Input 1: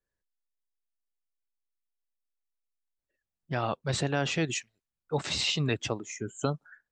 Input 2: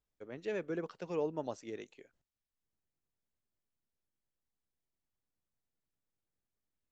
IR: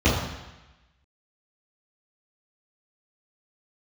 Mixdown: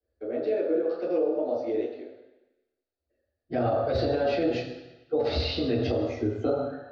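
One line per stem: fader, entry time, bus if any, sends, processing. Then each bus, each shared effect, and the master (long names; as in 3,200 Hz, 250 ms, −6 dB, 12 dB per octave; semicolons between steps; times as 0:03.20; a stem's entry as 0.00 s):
−10.5 dB, 0.00 s, send −6.5 dB, downward compressor 2 to 1, threshold −31 dBFS, peak gain reduction 5.5 dB
−3.0 dB, 0.00 s, send −9 dB, downward expander −59 dBFS; high-pass filter 280 Hz 6 dB per octave; downward compressor, threshold −40 dBFS, peak gain reduction 9 dB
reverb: on, RT60 1.0 s, pre-delay 3 ms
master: drawn EQ curve 100 Hz 0 dB, 160 Hz −17 dB, 260 Hz +4 dB, 370 Hz +6 dB, 670 Hz +12 dB, 1,000 Hz −5 dB, 1,400 Hz +5 dB, 3,000 Hz −5 dB, 4,600 Hz +9 dB, 7,000 Hz −23 dB; brickwall limiter −17 dBFS, peak gain reduction 6.5 dB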